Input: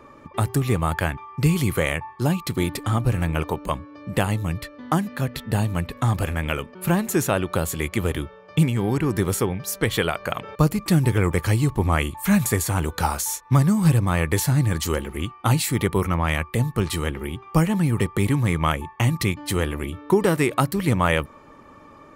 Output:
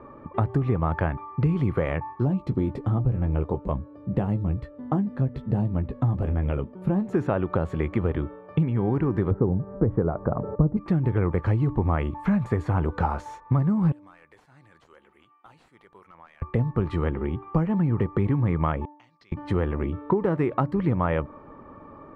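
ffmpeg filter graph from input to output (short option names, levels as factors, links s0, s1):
-filter_complex "[0:a]asettb=1/sr,asplit=3[s0][s1][s2];[s0]atrim=end=2.254[s3];[s1]atrim=start=2.25:end=7.13,asetpts=PTS-STARTPTS,afade=t=in:d=0.004:c=qsin,afade=t=out:st=4.876:d=0.004:c=qsin,equalizer=f=1600:t=o:w=2.5:g=-10.5,asplit=2[s4][s5];[s5]adelay=15,volume=0.398[s6];[s4][s6]amix=inputs=2:normalize=0,atrim=end_sample=215208[s7];[s2]atrim=start=7.126[s8];[s3][s7]acrossfade=d=0.004:c1=hsin:c2=qsin[s9];[s9][s8]acrossfade=d=0.004:c1=qsin:c2=hsin,asettb=1/sr,asplit=3[s10][s11][s12];[s10]atrim=end=9.314[s13];[s11]atrim=start=9.31:end=10.77,asetpts=PTS-STARTPTS,afade=t=in:d=0.004:c=qsin,afade=t=out:st=1.456:d=0.004:c=qsin,lowpass=f=1500:w=0.5412,lowpass=f=1500:w=1.3066,tiltshelf=f=870:g=9[s14];[s12]atrim=start=10.766[s15];[s13][s14]acrossfade=d=0.004:c1=hsin:c2=qsin[s16];[s16][s15]acrossfade=d=0.004:c1=qsin:c2=hsin,asettb=1/sr,asplit=3[s17][s18][s19];[s17]atrim=end=13.924[s20];[s18]atrim=start=13.92:end=16.42,asetpts=PTS-STARTPTS,afade=t=in:d=0.004:c=qsin,afade=t=out:st=2.496:d=0.004:c=qsin,aderivative,acompressor=threshold=0.00398:ratio=2:attack=3.2:release=140:knee=1:detection=peak,aeval=exprs='0.0168*(abs(mod(val(0)/0.0168+3,4)-2)-1)':c=same[s21];[s19]atrim=start=16.416[s22];[s20][s21]acrossfade=d=0.004:c1=hsin:c2=qsin[s23];[s23][s22]acrossfade=d=0.004:c1=qsin:c2=hsin,asettb=1/sr,asplit=3[s24][s25][s26];[s24]atrim=end=18.854[s27];[s25]atrim=start=18.85:end=19.32,asetpts=PTS-STARTPTS,afade=t=in:d=0.004:c=qsin,afade=t=out:st=0.466:d=0.004:c=qsin,acompressor=threshold=0.0562:ratio=1.5:attack=3.2:release=140:knee=1:detection=peak,bandpass=f=4900:t=q:w=5,asoftclip=type=hard:threshold=0.02[s28];[s26]atrim=start=19.316[s29];[s27][s28]acrossfade=d=0.004:c1=hsin:c2=qsin[s30];[s30][s29]acrossfade=d=0.004:c1=qsin:c2=hsin,lowpass=1200,bandreject=f=296.1:t=h:w=4,bandreject=f=592.2:t=h:w=4,bandreject=f=888.3:t=h:w=4,acompressor=threshold=0.0708:ratio=4,volume=1.41"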